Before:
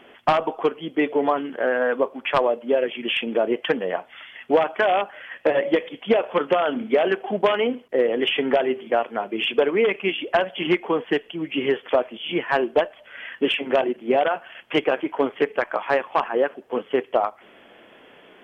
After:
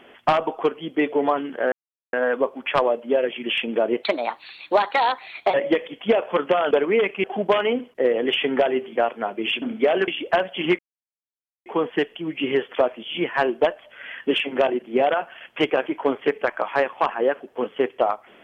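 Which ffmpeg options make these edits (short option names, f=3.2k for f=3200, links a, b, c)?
-filter_complex "[0:a]asplit=9[a][b][c][d][e][f][g][h][i];[a]atrim=end=1.72,asetpts=PTS-STARTPTS,afade=t=out:st=1.716:d=0.004:c=hsin,apad=pad_dur=0.41[j];[b]atrim=start=1.72:end=3.624,asetpts=PTS-STARTPTS,afade=t=in:d=0.004:c=hsin[k];[c]atrim=start=3.62:end=5.55,asetpts=PTS-STARTPTS,asetrate=56448,aresample=44100[l];[d]atrim=start=5.546:end=6.722[m];[e]atrim=start=9.558:end=10.092[n];[f]atrim=start=7.178:end=9.562[o];[g]atrim=start=6.718:end=7.182[p];[h]atrim=start=10.088:end=10.8,asetpts=PTS-STARTPTS,afade=t=out:st=0.708:d=0.004:c=hsin,apad=pad_dur=0.87[q];[i]atrim=start=10.8,asetpts=PTS-STARTPTS,afade=t=in:d=0.004:c=hsin[r];[j][k]concat=n=2:v=0:a=1[s];[s][l]acrossfade=d=0.004:c1=hsin:c2=hsin[t];[t][m]acrossfade=d=0.004:c1=hsin:c2=hsin[u];[u][n]acrossfade=d=0.004:c1=hsin:c2=hsin[v];[v][o]acrossfade=d=0.004:c1=hsin:c2=hsin[w];[w][p]acrossfade=d=0.004:c1=hsin:c2=hsin[x];[q][r]concat=n=2:v=0:a=1[y];[x][y]acrossfade=d=0.004:c1=hsin:c2=hsin"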